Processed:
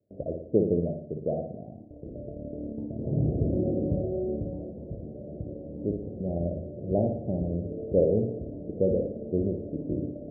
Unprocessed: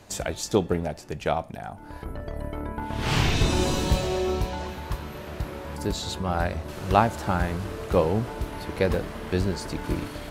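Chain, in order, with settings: HPF 110 Hz 12 dB/oct; gate with hold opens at -34 dBFS; steep low-pass 630 Hz 72 dB/oct; on a send: flutter echo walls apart 10 m, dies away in 0.61 s; on the sum: gain -1 dB

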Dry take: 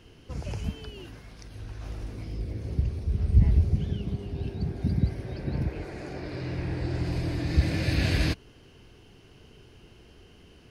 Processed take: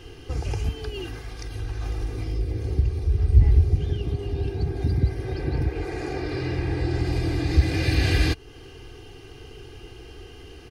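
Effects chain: comb 2.5 ms, depth 73%; in parallel at +3 dB: compressor, threshold -35 dBFS, peak gain reduction 23.5 dB

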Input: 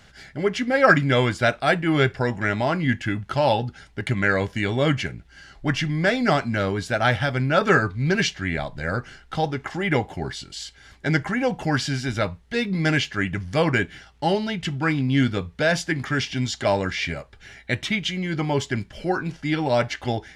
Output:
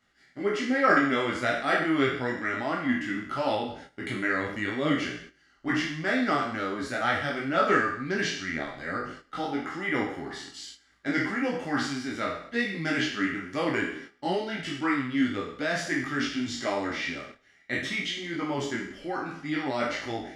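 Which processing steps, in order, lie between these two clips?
spectral trails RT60 0.69 s; gate -36 dBFS, range -11 dB; low shelf 210 Hz -10 dB; small resonant body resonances 280/1200/1900 Hz, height 11 dB, ringing for 30 ms; detuned doubles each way 19 cents; gain -6 dB

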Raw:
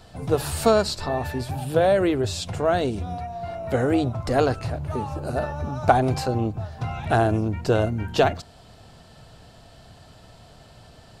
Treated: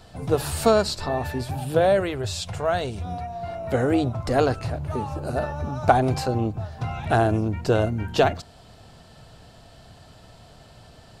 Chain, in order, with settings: 2–3.05 bell 290 Hz -10 dB 1.2 oct

